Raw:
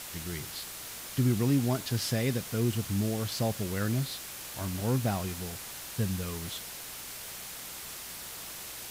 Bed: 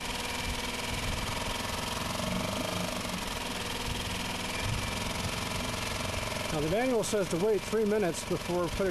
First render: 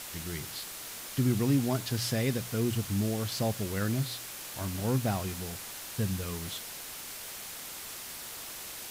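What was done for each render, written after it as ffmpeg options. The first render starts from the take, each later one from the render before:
-af "bandreject=f=60:t=h:w=4,bandreject=f=120:t=h:w=4,bandreject=f=180:t=h:w=4"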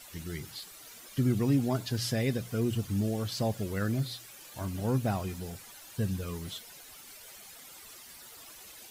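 -af "afftdn=nr=12:nf=-43"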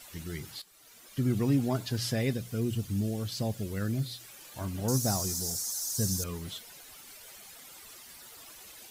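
-filter_complex "[0:a]asettb=1/sr,asplit=3[a][b][c];[a]atrim=end=2.334[d];[b]atrim=start=2.33:end=4.21,asetpts=PTS-STARTPTS,afade=t=in:d=0.004:c=qsin,afade=t=out:st=1.876:d=0.004:c=qsin,equalizer=f=1k:t=o:w=2.4:g=-6[e];[c]atrim=start=4.206[f];[d][e]acrossfade=d=0.004:c1=hsin:c2=qsin[g];[g][f]acrossfade=d=0.004:c1=qsin:c2=hsin,asettb=1/sr,asplit=3[h][i][j];[h]atrim=end=4.884[k];[i]atrim=start=4.88:end=6.24,asetpts=PTS-STARTPTS,afade=t=in:d=0.004:c=qsin,afade=t=out:st=1.356:d=0.004:c=qsin,highshelf=f=4k:t=q:w=3:g=13.5[l];[j]atrim=start=6.236[m];[k][l]acrossfade=d=0.004:c1=hsin:c2=qsin[n];[n][m]acrossfade=d=0.004:c1=qsin:c2=hsin,asplit=2[o][p];[o]atrim=end=0.62,asetpts=PTS-STARTPTS,afade=t=out:st=0.616:d=0.004:c=hsin:silence=0.199526[q];[p]atrim=start=0.62,asetpts=PTS-STARTPTS,afade=t=in:d=0.77:silence=0.199526[r];[q][r]concat=n=2:v=0:a=1"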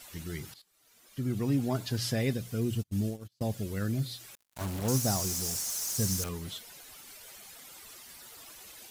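-filter_complex "[0:a]asplit=3[a][b][c];[a]afade=t=out:st=2.78:d=0.02[d];[b]agate=range=-38dB:threshold=-32dB:ratio=16:release=100:detection=peak,afade=t=in:st=2.78:d=0.02,afade=t=out:st=3.41:d=0.02[e];[c]afade=t=in:st=3.41:d=0.02[f];[d][e][f]amix=inputs=3:normalize=0,asettb=1/sr,asplit=3[g][h][i];[g]atrim=end=4.354[j];[h]atrim=start=4.35:end=6.29,asetpts=PTS-STARTPTS,afade=t=in:d=0.004:c=qsin,afade=t=out:st=1.936:d=0.004:c=qsin,acrusher=bits=5:mix=0:aa=0.5[k];[i]atrim=start=6.286[l];[j][k]acrossfade=d=0.004:c1=hsin:c2=qsin[m];[m][l]acrossfade=d=0.004:c1=qsin:c2=hsin,asplit=2[n][o];[n]atrim=end=0.54,asetpts=PTS-STARTPTS,afade=t=out:st=0.536:d=0.004:c=hsin:silence=0.177828[p];[o]atrim=start=0.54,asetpts=PTS-STARTPTS,afade=t=in:d=1.34:silence=0.177828[q];[p][q]concat=n=2:v=0:a=1"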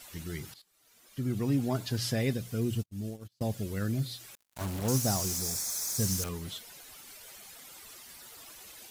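-filter_complex "[0:a]asettb=1/sr,asplit=3[a][b][c];[a]atrim=end=5.374[d];[b]atrim=start=5.37:end=6,asetpts=PTS-STARTPTS,afade=t=in:d=0.004:c=qsin,afade=t=out:st=0.626:d=0.004:c=qsin,asuperstop=centerf=2900:order=4:qfactor=5.2[e];[c]atrim=start=5.996[f];[d][e]acrossfade=d=0.004:c1=hsin:c2=qsin[g];[g][f]acrossfade=d=0.004:c1=qsin:c2=hsin,asplit=2[h][i];[h]atrim=end=2.86,asetpts=PTS-STARTPTS,afade=t=out:st=2.856:d=0.004:c=hsin:silence=0.149624[j];[i]atrim=start=2.86,asetpts=PTS-STARTPTS,afade=t=in:d=0.42:silence=0.149624[k];[j][k]concat=n=2:v=0:a=1"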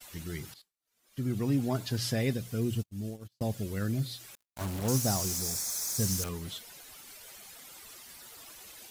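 -af "agate=range=-33dB:threshold=-52dB:ratio=3:detection=peak"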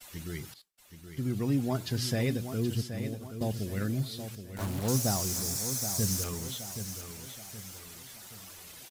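-af "aecho=1:1:774|1548|2322|3096|3870:0.335|0.147|0.0648|0.0285|0.0126"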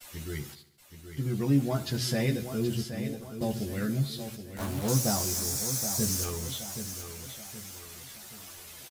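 -filter_complex "[0:a]asplit=2[a][b];[b]adelay=14,volume=-3dB[c];[a][c]amix=inputs=2:normalize=0,aecho=1:1:71|142|213|284|355|426:0.141|0.0833|0.0492|0.029|0.0171|0.0101"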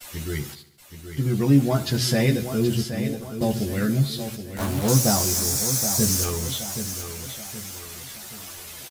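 -af "volume=7.5dB"

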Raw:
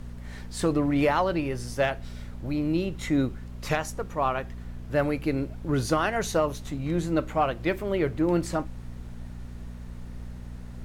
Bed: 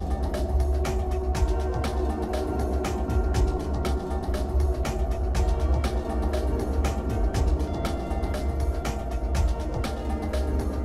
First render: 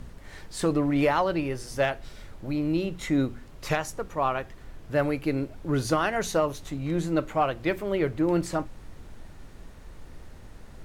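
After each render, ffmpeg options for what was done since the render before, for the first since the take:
-af "bandreject=f=60:t=h:w=4,bandreject=f=120:t=h:w=4,bandreject=f=180:t=h:w=4,bandreject=f=240:t=h:w=4"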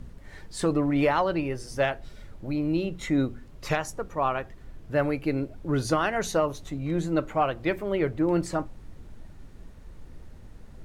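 -af "afftdn=nr=6:nf=-47"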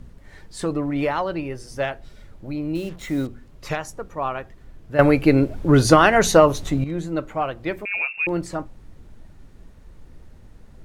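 -filter_complex "[0:a]asettb=1/sr,asplit=3[a][b][c];[a]atrim=end=2.754[d];[b]atrim=start=2.75:end=3.27,asetpts=PTS-STARTPTS,afade=t=in:d=0.004:c=qsin,afade=t=out:st=0.516:d=0.004:c=qsin,acrusher=bits=6:mix=0:aa=0.5[e];[c]atrim=start=3.266[f];[d][e]acrossfade=d=0.004:c1=hsin:c2=qsin[g];[g][f]acrossfade=d=0.004:c1=qsin:c2=hsin,asettb=1/sr,asplit=3[h][i][j];[h]atrim=end=7.854[k];[i]atrim=start=7.85:end=8.27,asetpts=PTS-STARTPTS,afade=t=in:d=0.004:c=qsin,afade=t=out:st=0.416:d=0.004:c=qsin,lowpass=f=2.4k:t=q:w=0.5098,lowpass=f=2.4k:t=q:w=0.6013,lowpass=f=2.4k:t=q:w=0.9,lowpass=f=2.4k:t=q:w=2.563,afreqshift=-2800[l];[j]atrim=start=8.266[m];[k][l]acrossfade=d=0.004:c1=hsin:c2=qsin[n];[n][m]acrossfade=d=0.004:c1=qsin:c2=hsin,asplit=3[o][p][q];[o]atrim=end=4.992[r];[p]atrim=start=4.988:end=6.842,asetpts=PTS-STARTPTS,volume=11.5dB[s];[q]atrim=start=6.838[t];[r][s]acrossfade=d=0.004:c1=hsin:c2=hsin[u];[u][t]acrossfade=d=0.004:c1=hsin:c2=hsin"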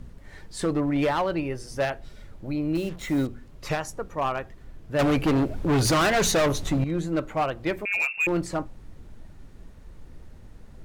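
-af "volume=19dB,asoftclip=hard,volume=-19dB"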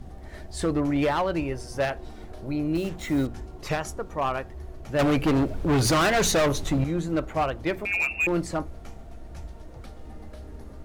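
-filter_complex "[1:a]volume=-16.5dB[a];[0:a][a]amix=inputs=2:normalize=0"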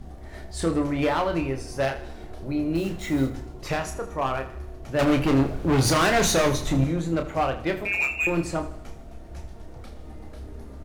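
-filter_complex "[0:a]asplit=2[a][b];[b]adelay=30,volume=-6dB[c];[a][c]amix=inputs=2:normalize=0,aecho=1:1:79|158|237|316|395:0.2|0.102|0.0519|0.0265|0.0135"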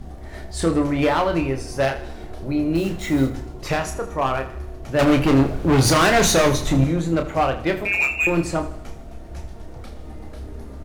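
-af "volume=4.5dB"

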